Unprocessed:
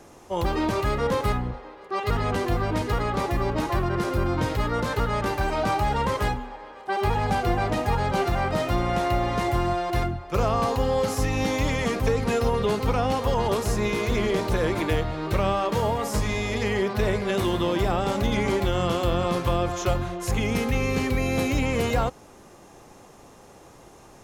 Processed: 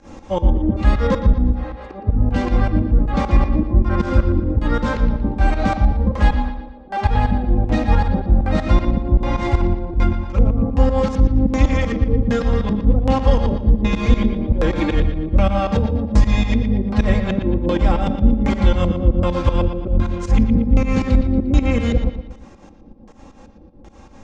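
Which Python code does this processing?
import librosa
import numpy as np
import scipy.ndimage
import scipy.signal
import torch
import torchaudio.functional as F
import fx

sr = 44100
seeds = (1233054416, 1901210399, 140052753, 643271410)

p1 = scipy.signal.sosfilt(scipy.signal.butter(6, 8700.0, 'lowpass', fs=sr, output='sos'), x)
p2 = fx.bass_treble(p1, sr, bass_db=10, treble_db=-3)
p3 = p2 + 0.78 * np.pad(p2, (int(3.7 * sr / 1000.0), 0))[:len(p2)]
p4 = fx.rider(p3, sr, range_db=10, speed_s=0.5)
p5 = p3 + (p4 * 10.0 ** (2.5 / 20.0))
p6 = fx.filter_lfo_lowpass(p5, sr, shape='square', hz=1.3, low_hz=400.0, high_hz=6400.0, q=0.83)
p7 = fx.volume_shaper(p6, sr, bpm=157, per_beat=2, depth_db=-21, release_ms=127.0, shape='fast start')
p8 = fx.comb_fb(p7, sr, f0_hz=220.0, decay_s=0.53, harmonics='all', damping=0.0, mix_pct=50)
y = p8 + fx.echo_bbd(p8, sr, ms=117, stages=4096, feedback_pct=43, wet_db=-9.5, dry=0)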